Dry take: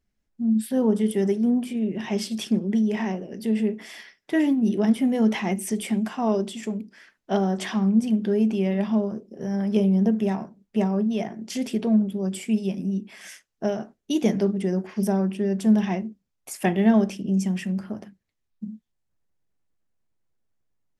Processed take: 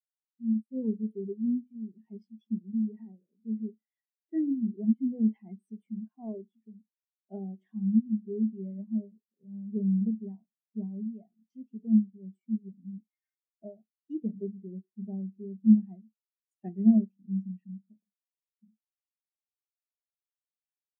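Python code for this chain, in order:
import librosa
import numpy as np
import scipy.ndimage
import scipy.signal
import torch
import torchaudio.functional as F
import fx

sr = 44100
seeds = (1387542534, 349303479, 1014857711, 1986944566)

y = fx.comb(x, sr, ms=3.3, depth=0.82, at=(12.98, 13.65))
y = fx.spectral_expand(y, sr, expansion=2.5)
y = F.gain(torch.from_numpy(y), -1.5).numpy()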